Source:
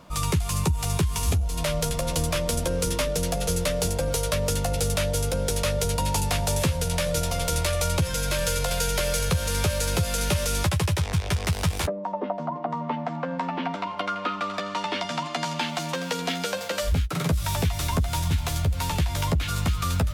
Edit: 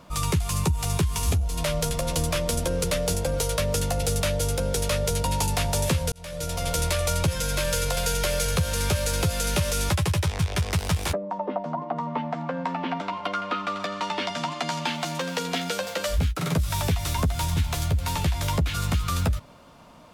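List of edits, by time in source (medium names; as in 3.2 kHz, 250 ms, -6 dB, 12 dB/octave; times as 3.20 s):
2.84–3.58 s: delete
6.86–7.44 s: fade in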